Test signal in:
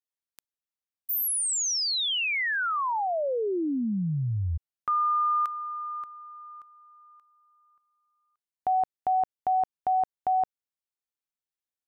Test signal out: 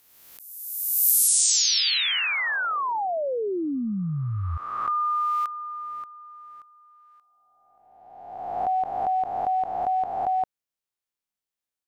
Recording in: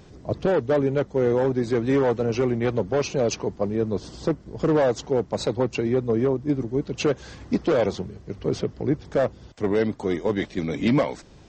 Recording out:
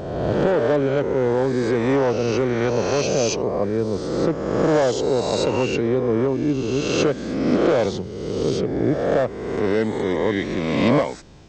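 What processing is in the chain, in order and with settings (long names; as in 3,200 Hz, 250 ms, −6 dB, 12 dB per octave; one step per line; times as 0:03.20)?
peak hold with a rise ahead of every peak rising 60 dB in 1.46 s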